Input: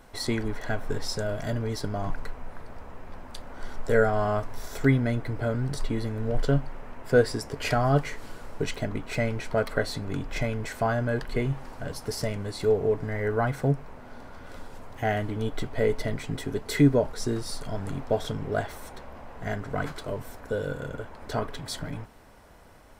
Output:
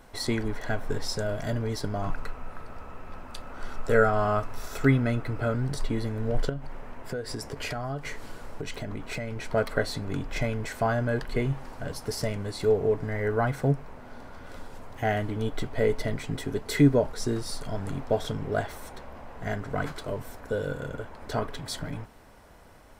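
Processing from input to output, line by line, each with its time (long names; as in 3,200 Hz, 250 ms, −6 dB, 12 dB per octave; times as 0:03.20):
0:02.02–0:05.54: hollow resonant body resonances 1,300/2,600 Hz, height 10 dB, ringing for 25 ms
0:06.49–0:09.51: downward compressor 8 to 1, threshold −29 dBFS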